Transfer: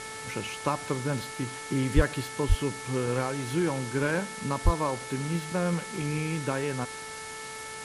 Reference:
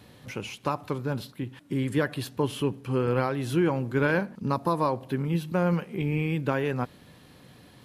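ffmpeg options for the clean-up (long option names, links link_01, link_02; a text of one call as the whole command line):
ffmpeg -i in.wav -filter_complex "[0:a]bandreject=frequency=439:width_type=h:width=4,bandreject=frequency=878:width_type=h:width=4,bandreject=frequency=1317:width_type=h:width=4,bandreject=frequency=1756:width_type=h:width=4,bandreject=frequency=2195:width_type=h:width=4,asplit=3[link_01][link_02][link_03];[link_01]afade=type=out:start_time=1.95:duration=0.02[link_04];[link_02]highpass=frequency=140:width=0.5412,highpass=frequency=140:width=1.3066,afade=type=in:start_time=1.95:duration=0.02,afade=type=out:start_time=2.07:duration=0.02[link_05];[link_03]afade=type=in:start_time=2.07:duration=0.02[link_06];[link_04][link_05][link_06]amix=inputs=3:normalize=0,asplit=3[link_07][link_08][link_09];[link_07]afade=type=out:start_time=2.48:duration=0.02[link_10];[link_08]highpass=frequency=140:width=0.5412,highpass=frequency=140:width=1.3066,afade=type=in:start_time=2.48:duration=0.02,afade=type=out:start_time=2.6:duration=0.02[link_11];[link_09]afade=type=in:start_time=2.6:duration=0.02[link_12];[link_10][link_11][link_12]amix=inputs=3:normalize=0,asplit=3[link_13][link_14][link_15];[link_13]afade=type=out:start_time=4.64:duration=0.02[link_16];[link_14]highpass=frequency=140:width=0.5412,highpass=frequency=140:width=1.3066,afade=type=in:start_time=4.64:duration=0.02,afade=type=out:start_time=4.76:duration=0.02[link_17];[link_15]afade=type=in:start_time=4.76:duration=0.02[link_18];[link_16][link_17][link_18]amix=inputs=3:normalize=0,afwtdn=0.0089,asetnsamples=nb_out_samples=441:pad=0,asendcmd='2.21 volume volume 3.5dB',volume=0dB" out.wav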